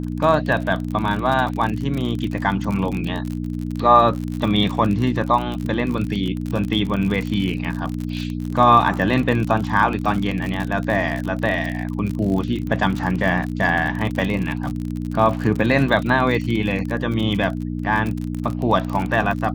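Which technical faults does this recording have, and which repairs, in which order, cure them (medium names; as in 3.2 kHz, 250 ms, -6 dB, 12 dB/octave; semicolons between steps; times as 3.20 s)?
crackle 44 per s -24 dBFS
hum 60 Hz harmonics 5 -26 dBFS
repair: de-click; de-hum 60 Hz, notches 5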